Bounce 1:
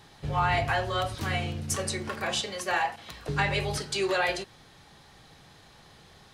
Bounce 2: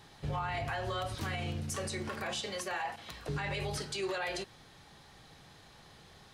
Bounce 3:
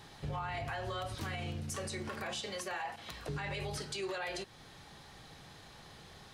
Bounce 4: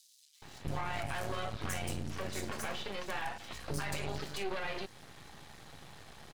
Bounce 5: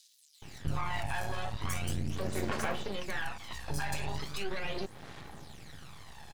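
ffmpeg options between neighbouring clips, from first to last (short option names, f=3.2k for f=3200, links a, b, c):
-af "alimiter=level_in=1dB:limit=-24dB:level=0:latency=1:release=59,volume=-1dB,volume=-2.5dB"
-af "acompressor=threshold=-48dB:ratio=1.5,volume=2.5dB"
-filter_complex "[0:a]acompressor=mode=upward:threshold=-52dB:ratio=2.5,aeval=exprs='max(val(0),0)':c=same,acrossover=split=4600[a][b];[a]adelay=420[c];[c][b]amix=inputs=2:normalize=0,volume=5.5dB"
-af "aphaser=in_gain=1:out_gain=1:delay=1.2:decay=0.54:speed=0.39:type=sinusoidal"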